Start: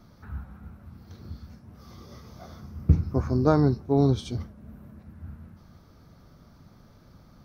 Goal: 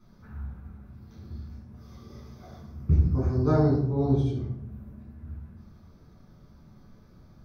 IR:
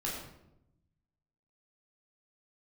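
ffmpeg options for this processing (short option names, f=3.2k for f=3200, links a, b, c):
-filter_complex "[0:a]asettb=1/sr,asplit=3[a][b][c];[a]atrim=end=3.904[d];[b]atrim=start=3.9:end=4.5,asetpts=PTS-STARTPTS,afade=t=in:d=0.004:c=qsin,afade=t=out:st=0.596:d=0.004:c=qsin,highshelf=f=2.5k:g=-9.5[e];[c]atrim=start=4.496[f];[d][e]acrossfade=d=0.004:c1=hsin:c2=qsin[g];[g][f]acrossfade=d=0.004:c1=qsin:c2=hsin[h];[1:a]atrim=start_sample=2205,asetrate=57330,aresample=44100[i];[h][i]afir=irnorm=-1:irlink=0,volume=-5.5dB"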